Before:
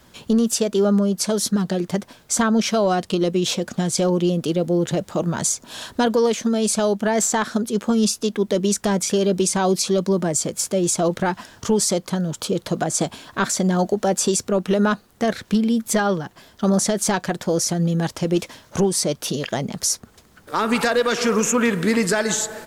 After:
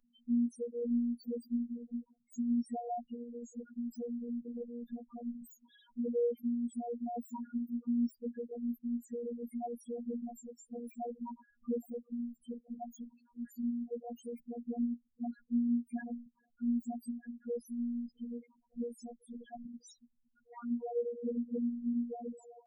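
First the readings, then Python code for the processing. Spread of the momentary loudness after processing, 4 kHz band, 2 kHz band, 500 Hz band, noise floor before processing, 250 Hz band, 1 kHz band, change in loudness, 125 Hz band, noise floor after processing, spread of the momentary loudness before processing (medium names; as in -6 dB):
14 LU, under -40 dB, under -35 dB, -20.0 dB, -53 dBFS, -14.0 dB, -21.5 dB, -17.5 dB, under -30 dB, -76 dBFS, 6 LU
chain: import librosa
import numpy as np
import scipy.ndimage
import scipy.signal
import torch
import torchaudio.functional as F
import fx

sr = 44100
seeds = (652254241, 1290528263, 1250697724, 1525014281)

y = fx.self_delay(x, sr, depth_ms=0.35)
y = fx.spec_topn(y, sr, count=1)
y = fx.robotise(y, sr, hz=238.0)
y = y * 10.0 ** (-7.0 / 20.0)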